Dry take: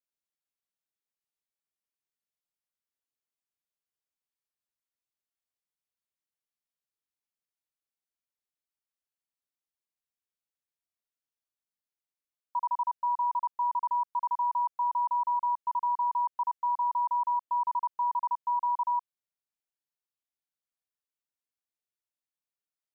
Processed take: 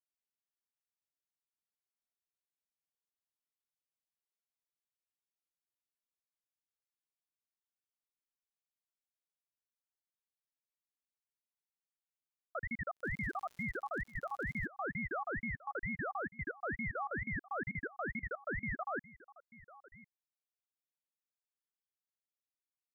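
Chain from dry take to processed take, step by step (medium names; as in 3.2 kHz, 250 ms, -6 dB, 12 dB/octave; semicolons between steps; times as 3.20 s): 12.96–14.64 s: crackle 130 per s -39 dBFS; echo from a far wall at 180 m, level -18 dB; ring modulator with a swept carrier 670 Hz, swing 80%, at 2.2 Hz; trim -7 dB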